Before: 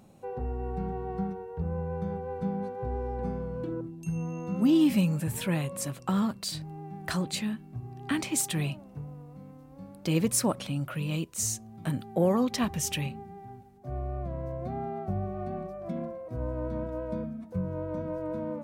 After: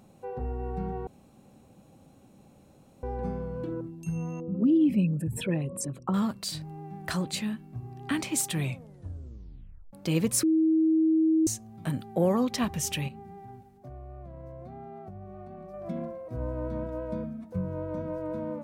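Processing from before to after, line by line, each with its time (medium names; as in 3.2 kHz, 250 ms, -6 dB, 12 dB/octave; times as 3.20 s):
1.07–3.03 s: room tone
4.40–6.14 s: resonances exaggerated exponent 2
8.58 s: tape stop 1.35 s
10.43–11.47 s: bleep 319 Hz -19.5 dBFS
13.08–15.74 s: compression, threshold -40 dBFS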